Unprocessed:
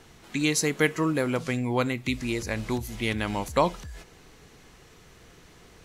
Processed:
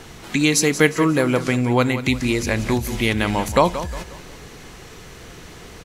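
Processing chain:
in parallel at +2.5 dB: downward compressor, threshold −35 dBFS, peak gain reduction 17 dB
on the sum: repeating echo 179 ms, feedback 39%, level −12.5 dB
level +5 dB

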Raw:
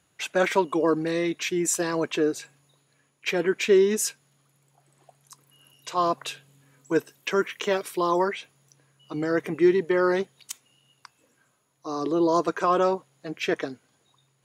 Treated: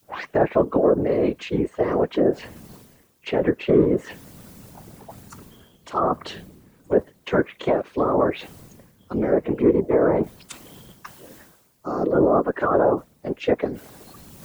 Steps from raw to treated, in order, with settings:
turntable start at the beginning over 0.36 s
in parallel at −8.5 dB: soft clipping −18.5 dBFS, distortion −13 dB
on the sum: treble cut that deepens with the level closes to 1,100 Hz, closed at −17 dBFS
formants moved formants +2 semitones
background noise violet −50 dBFS
random phases in short frames
high-pass filter 350 Hz 6 dB per octave
spectral tilt −4.5 dB per octave
reversed playback
upward compression, threshold −29 dBFS
reversed playback

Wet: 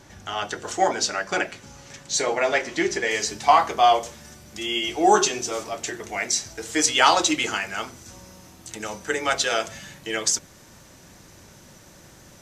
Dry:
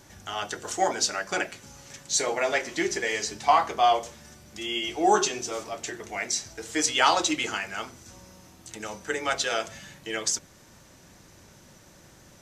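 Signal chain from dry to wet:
high-shelf EQ 8,500 Hz −11 dB, from 0:03.11 +2 dB
level +4 dB

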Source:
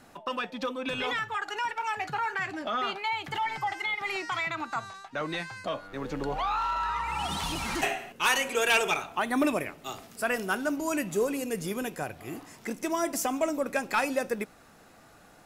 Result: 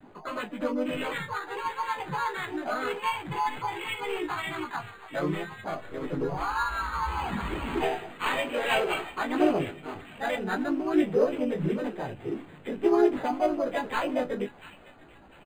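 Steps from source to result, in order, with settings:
spectral magnitudes quantised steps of 15 dB
Butterworth low-pass 6,800 Hz 96 dB per octave
low-shelf EQ 400 Hz +5 dB
hollow resonant body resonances 350/3,000 Hz, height 6 dB, ringing for 45 ms
pitch vibrato 1.1 Hz 65 cents
multi-voice chorus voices 4, 0.32 Hz, delay 16 ms, depth 4.2 ms
double-tracking delay 20 ms −8 dB
delay with a high-pass on its return 693 ms, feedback 34%, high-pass 2,200 Hz, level −10 dB
pitch-shifted copies added +3 semitones −3 dB
linearly interpolated sample-rate reduction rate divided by 8×

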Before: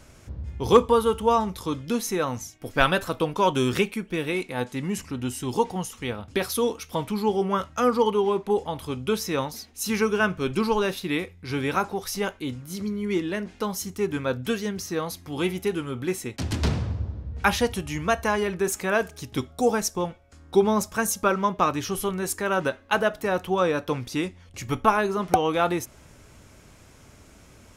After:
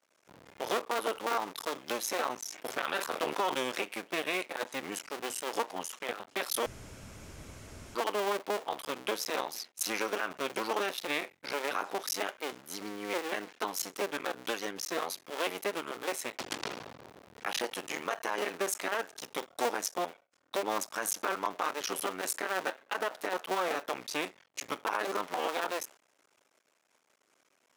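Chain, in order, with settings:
sub-harmonics by changed cycles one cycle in 2, muted
downward expander −42 dBFS
high-shelf EQ 4,200 Hz −8 dB
downward compressor 2 to 1, threshold −29 dBFS, peak gain reduction 10 dB
high-pass filter 410 Hz 12 dB per octave
spectral tilt +1.5 dB per octave
brickwall limiter −21.5 dBFS, peak gain reduction 11.5 dB
0:02.38–0:03.63: level that may fall only so fast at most 85 dB per second
0:06.66–0:07.95: fill with room tone
level +2.5 dB

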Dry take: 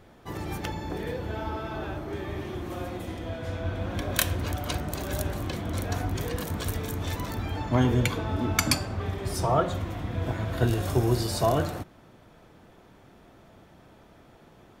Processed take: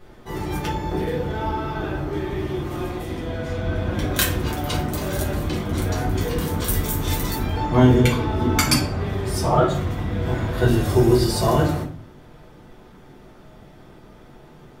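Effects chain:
0:06.63–0:07.38: high-shelf EQ 8,100 Hz → 5,100 Hz +11.5 dB
rectangular room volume 33 cubic metres, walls mixed, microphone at 0.92 metres

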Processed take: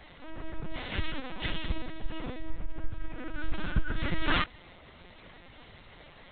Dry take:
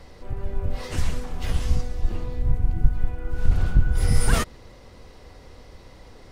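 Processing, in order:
lower of the sound and its delayed copy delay 5.7 ms
tilt shelving filter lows −6.5 dB, about 1,200 Hz
linear-prediction vocoder at 8 kHz pitch kept

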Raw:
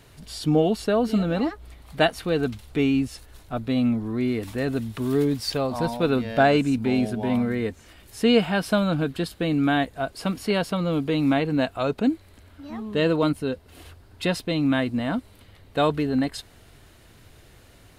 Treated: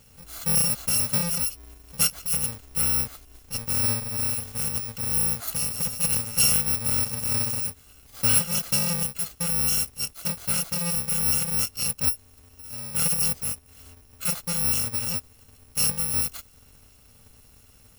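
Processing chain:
samples in bit-reversed order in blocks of 128 samples
level −2.5 dB

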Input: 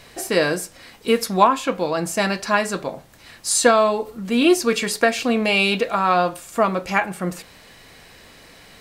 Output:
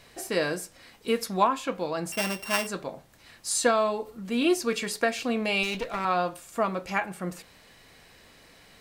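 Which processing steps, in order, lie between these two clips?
0:02.12–0:02.67: samples sorted by size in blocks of 16 samples
0:05.63–0:06.05: asymmetric clip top −26.5 dBFS
level −8 dB

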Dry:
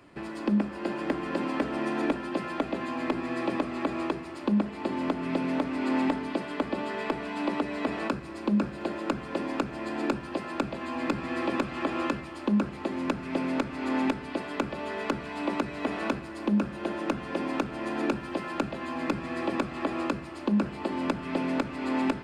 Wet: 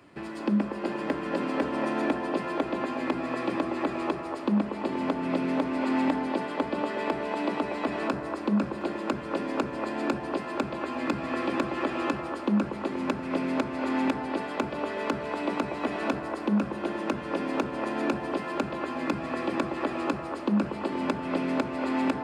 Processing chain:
high-pass filter 62 Hz
on a send: delay with a band-pass on its return 238 ms, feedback 57%, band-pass 720 Hz, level −3.5 dB

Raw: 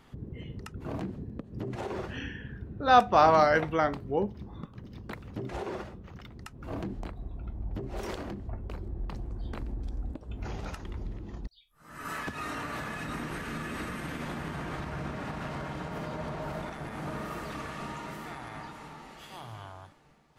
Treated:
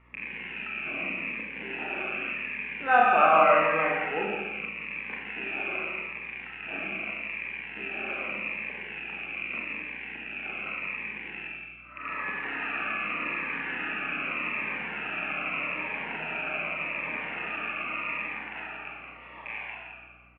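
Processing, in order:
loose part that buzzes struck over −44 dBFS, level −25 dBFS
dynamic equaliser 1,300 Hz, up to +4 dB, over −51 dBFS, Q 6.8
Chebyshev band-pass filter 160–2,600 Hz, order 5
spectral tilt +4 dB per octave
0:02.87–0:03.32: floating-point word with a short mantissa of 8 bits
repeating echo 168 ms, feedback 33%, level −6.5 dB
four-comb reverb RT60 0.95 s, combs from 29 ms, DRR −1.5 dB
mains hum 60 Hz, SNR 32 dB
phaser whose notches keep moving one way falling 0.83 Hz

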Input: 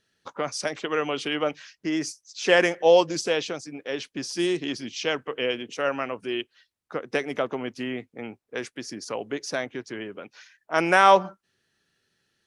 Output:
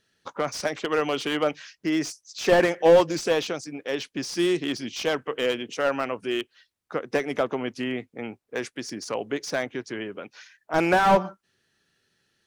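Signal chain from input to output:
slew-rate limiting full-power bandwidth 120 Hz
level +2 dB

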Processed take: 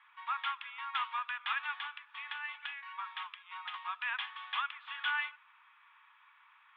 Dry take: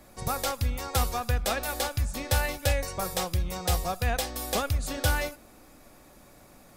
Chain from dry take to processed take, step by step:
0:01.72–0:03.74: downward compressor 6 to 1, threshold −29 dBFS, peak gain reduction 9 dB
Chebyshev band-pass filter 930–3,400 Hz, order 5

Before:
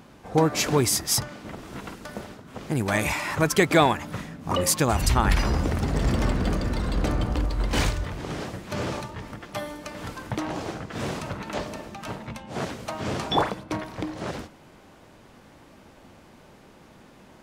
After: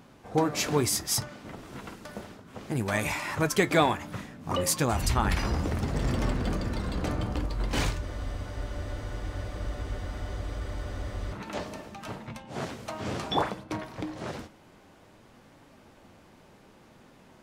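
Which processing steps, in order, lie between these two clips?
flanger 0.64 Hz, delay 7 ms, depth 4.2 ms, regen −64%
frozen spectrum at 0:08.04, 3.29 s

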